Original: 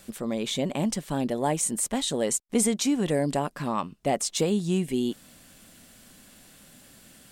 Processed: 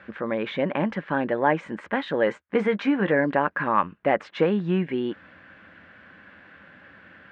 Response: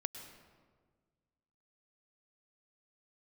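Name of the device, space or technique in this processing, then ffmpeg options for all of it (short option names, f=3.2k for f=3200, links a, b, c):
bass cabinet: -filter_complex "[0:a]highpass=71,equalizer=f=80:t=q:w=4:g=9,equalizer=f=140:t=q:w=4:g=-8,equalizer=f=240:t=q:w=4:g=-9,equalizer=f=400:t=q:w=4:g=-6,equalizer=f=700:t=q:w=4:g=-7,equalizer=f=1.6k:t=q:w=4:g=8,lowpass=f=2.2k:w=0.5412,lowpass=f=2.2k:w=1.3066,asettb=1/sr,asplit=3[a][b][c];[a]atrim=end=2.254[d];[b]atrim=start=2.25:end=3.25,asetpts=PTS-STARTPTS,afade=t=in:d=0.004:c=qsin,afade=t=out:st=0.996:d=0.004:c=qsin,asplit=2[e][f];[f]adelay=15,volume=-10.5dB[g];[e][g]amix=inputs=2:normalize=0,atrim=end_sample=44100[h];[c]atrim=start=3.246[i];[d][h]acrossfade=d=0.004:c1=hsin:c2=qsin[j];[j][i]acrossfade=d=0.004:c1=qsin:c2=hsin,highpass=f=220:p=1,volume=9dB"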